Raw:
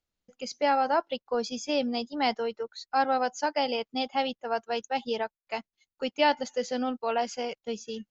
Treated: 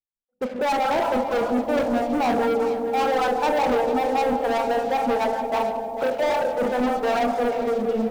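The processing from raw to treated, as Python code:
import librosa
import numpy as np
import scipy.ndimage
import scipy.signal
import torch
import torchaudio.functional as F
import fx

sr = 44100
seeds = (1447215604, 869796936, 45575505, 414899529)

p1 = fx.noise_reduce_blind(x, sr, reduce_db=7)
p2 = fx.highpass(p1, sr, hz=410.0, slope=24, at=(6.03, 6.58))
p3 = fx.dereverb_blind(p2, sr, rt60_s=0.96)
p4 = scipy.signal.sosfilt(scipy.signal.butter(4, 1300.0, 'lowpass', fs=sr, output='sos'), p3)
p5 = fx.over_compress(p4, sr, threshold_db=-30.0, ratio=-1.0)
p6 = p4 + (p5 * 10.0 ** (1.0 / 20.0))
p7 = fx.rev_schroeder(p6, sr, rt60_s=0.51, comb_ms=25, drr_db=3.0)
p8 = fx.harmonic_tremolo(p7, sr, hz=5.1, depth_pct=100, crossover_hz=690.0)
p9 = fx.leveller(p8, sr, passes=5)
p10 = p9 + fx.echo_bbd(p9, sr, ms=171, stages=1024, feedback_pct=75, wet_db=-7, dry=0)
p11 = fx.echo_crushed(p10, sr, ms=447, feedback_pct=35, bits=7, wet_db=-12.5)
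y = p11 * 10.0 ** (-5.0 / 20.0)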